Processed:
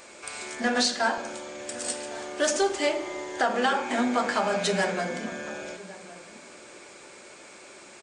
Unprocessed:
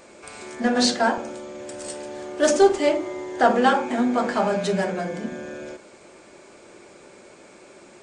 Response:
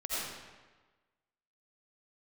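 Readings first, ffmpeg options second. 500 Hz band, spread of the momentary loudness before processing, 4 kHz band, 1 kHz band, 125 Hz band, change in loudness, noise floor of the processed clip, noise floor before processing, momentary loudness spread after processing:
-6.5 dB, 19 LU, -1.0 dB, -4.5 dB, -6.0 dB, -5.5 dB, -48 dBFS, -49 dBFS, 22 LU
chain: -filter_complex "[0:a]tiltshelf=f=820:g=-5.5,alimiter=limit=-13.5dB:level=0:latency=1:release=267,asplit=2[a][b];[b]adelay=1108,volume=-17dB,highshelf=f=4k:g=-24.9[c];[a][c]amix=inputs=2:normalize=0,asplit=2[d][e];[1:a]atrim=start_sample=2205[f];[e][f]afir=irnorm=-1:irlink=0,volume=-19dB[g];[d][g]amix=inputs=2:normalize=0,volume=-1dB"

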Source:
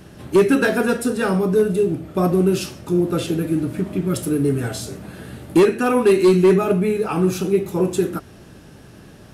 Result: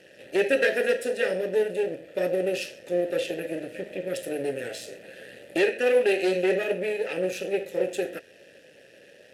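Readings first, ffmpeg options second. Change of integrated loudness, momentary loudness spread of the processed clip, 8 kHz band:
-8.0 dB, 12 LU, -10.0 dB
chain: -filter_complex "[0:a]aeval=exprs='if(lt(val(0),0),0.251*val(0),val(0))':c=same,asplit=3[a][b][c];[a]bandpass=f=530:t=q:w=8,volume=0dB[d];[b]bandpass=f=1.84k:t=q:w=8,volume=-6dB[e];[c]bandpass=f=2.48k:t=q:w=8,volume=-9dB[f];[d][e][f]amix=inputs=3:normalize=0,crystalizer=i=5:c=0,volume=7dB"

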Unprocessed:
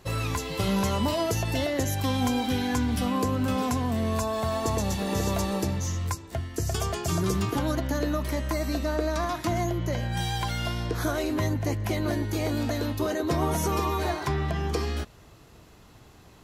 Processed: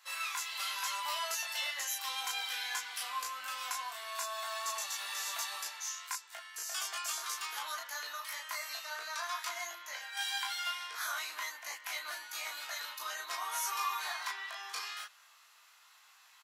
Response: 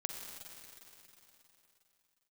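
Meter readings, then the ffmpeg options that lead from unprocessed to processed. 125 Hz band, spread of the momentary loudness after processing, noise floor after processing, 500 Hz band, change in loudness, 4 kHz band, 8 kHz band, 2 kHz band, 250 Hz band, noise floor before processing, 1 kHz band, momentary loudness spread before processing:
under -40 dB, 6 LU, -62 dBFS, -23.0 dB, -9.5 dB, -1.5 dB, -1.5 dB, -2.0 dB, under -40 dB, -52 dBFS, -7.5 dB, 4 LU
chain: -filter_complex "[0:a]highpass=f=1.1k:w=0.5412,highpass=f=1.1k:w=1.3066,asplit=2[a][b];[b]aecho=0:1:20|35:0.708|0.668[c];[a][c]amix=inputs=2:normalize=0,volume=-4.5dB"

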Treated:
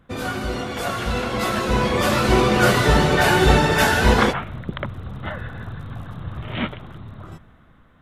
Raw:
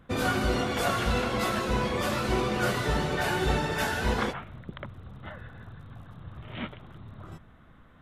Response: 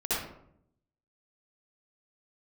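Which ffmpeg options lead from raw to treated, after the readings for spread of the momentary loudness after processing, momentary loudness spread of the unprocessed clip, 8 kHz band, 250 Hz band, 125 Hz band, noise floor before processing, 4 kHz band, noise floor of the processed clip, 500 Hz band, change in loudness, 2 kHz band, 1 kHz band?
18 LU, 19 LU, +9.0 dB, +9.0 dB, +9.5 dB, -54 dBFS, +9.0 dB, -52 dBFS, +9.0 dB, +9.0 dB, +9.5 dB, +9.0 dB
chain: -af "dynaudnorm=f=320:g=11:m=14dB"

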